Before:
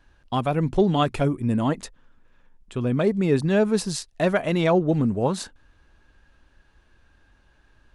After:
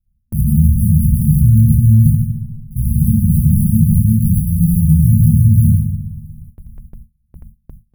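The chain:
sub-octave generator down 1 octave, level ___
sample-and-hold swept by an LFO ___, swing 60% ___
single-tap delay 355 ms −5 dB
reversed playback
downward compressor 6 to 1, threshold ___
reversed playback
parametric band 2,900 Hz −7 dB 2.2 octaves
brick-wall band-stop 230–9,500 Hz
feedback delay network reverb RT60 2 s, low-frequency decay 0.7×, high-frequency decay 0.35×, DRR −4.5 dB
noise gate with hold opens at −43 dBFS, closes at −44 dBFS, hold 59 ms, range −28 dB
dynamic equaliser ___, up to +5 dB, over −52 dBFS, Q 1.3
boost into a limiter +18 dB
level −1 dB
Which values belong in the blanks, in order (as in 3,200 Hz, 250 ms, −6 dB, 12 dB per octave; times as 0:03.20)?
−1 dB, 37×, 0.56 Hz, −28 dBFS, 580 Hz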